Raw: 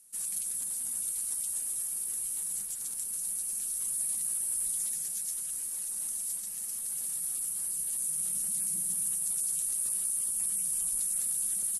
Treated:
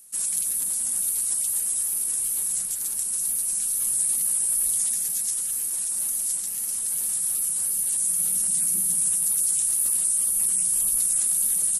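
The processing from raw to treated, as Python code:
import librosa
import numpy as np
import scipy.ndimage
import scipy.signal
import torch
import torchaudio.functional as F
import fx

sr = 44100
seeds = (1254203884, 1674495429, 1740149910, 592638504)

y = fx.wow_flutter(x, sr, seeds[0], rate_hz=2.1, depth_cents=69.0)
y = fx.hum_notches(y, sr, base_hz=50, count=4)
y = F.gain(torch.from_numpy(y), 8.5).numpy()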